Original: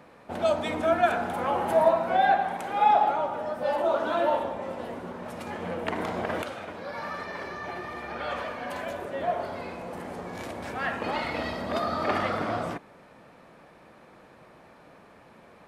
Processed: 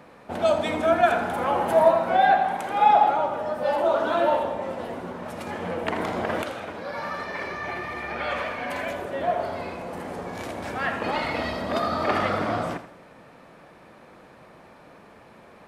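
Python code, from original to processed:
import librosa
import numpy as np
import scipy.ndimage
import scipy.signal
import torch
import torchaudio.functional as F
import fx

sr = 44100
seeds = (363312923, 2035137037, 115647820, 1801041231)

y = fx.peak_eq(x, sr, hz=2200.0, db=6.5, octaves=0.45, at=(7.34, 8.95))
y = fx.echo_feedback(y, sr, ms=82, feedback_pct=39, wet_db=-12.0)
y = y * librosa.db_to_amplitude(3.0)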